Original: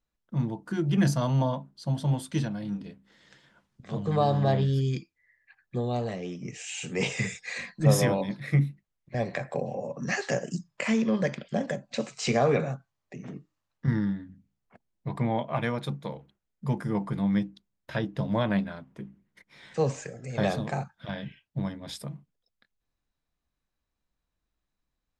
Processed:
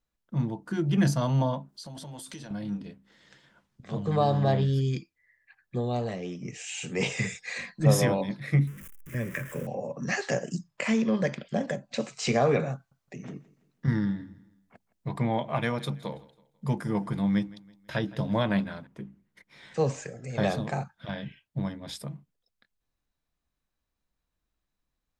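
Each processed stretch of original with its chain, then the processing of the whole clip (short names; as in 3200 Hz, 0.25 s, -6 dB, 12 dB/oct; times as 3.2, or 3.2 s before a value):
1.69–2.51 tone controls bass -8 dB, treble +7 dB + transient shaper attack +2 dB, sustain +7 dB + compressor 12:1, threshold -38 dBFS
8.67–9.67 zero-crossing step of -39 dBFS + high shelf 7100 Hz +9.5 dB + fixed phaser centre 1800 Hz, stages 4
12.75–18.87 high shelf 3300 Hz +5 dB + feedback echo 0.164 s, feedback 39%, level -20.5 dB
whole clip: dry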